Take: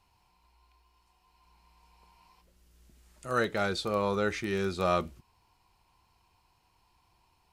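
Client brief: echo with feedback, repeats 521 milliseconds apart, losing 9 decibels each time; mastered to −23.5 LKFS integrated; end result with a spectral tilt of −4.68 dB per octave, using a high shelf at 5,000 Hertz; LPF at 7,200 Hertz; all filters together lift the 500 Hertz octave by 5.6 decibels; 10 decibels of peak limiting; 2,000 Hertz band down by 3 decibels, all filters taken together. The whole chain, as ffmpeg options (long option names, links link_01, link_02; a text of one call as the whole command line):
ffmpeg -i in.wav -af "lowpass=7200,equalizer=frequency=500:width_type=o:gain=7,equalizer=frequency=2000:width_type=o:gain=-4,highshelf=frequency=5000:gain=-6.5,alimiter=limit=-21.5dB:level=0:latency=1,aecho=1:1:521|1042|1563|2084:0.355|0.124|0.0435|0.0152,volume=9dB" out.wav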